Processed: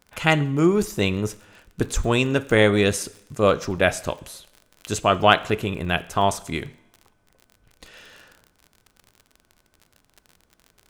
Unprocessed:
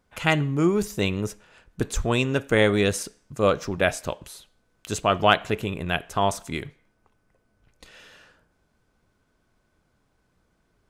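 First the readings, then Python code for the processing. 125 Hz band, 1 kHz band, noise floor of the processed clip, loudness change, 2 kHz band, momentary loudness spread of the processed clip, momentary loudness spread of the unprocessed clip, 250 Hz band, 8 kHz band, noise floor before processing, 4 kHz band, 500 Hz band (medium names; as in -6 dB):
+2.5 dB, +2.5 dB, -66 dBFS, +2.5 dB, +2.5 dB, 13 LU, 13 LU, +2.5 dB, +2.5 dB, -70 dBFS, +2.5 dB, +2.5 dB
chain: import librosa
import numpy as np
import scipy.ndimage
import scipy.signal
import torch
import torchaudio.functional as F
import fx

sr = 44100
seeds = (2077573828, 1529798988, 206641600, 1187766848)

y = fx.dmg_crackle(x, sr, seeds[0], per_s=40.0, level_db=-37.0)
y = fx.rev_double_slope(y, sr, seeds[1], early_s=0.76, late_s=2.8, knee_db=-26, drr_db=17.5)
y = F.gain(torch.from_numpy(y), 2.5).numpy()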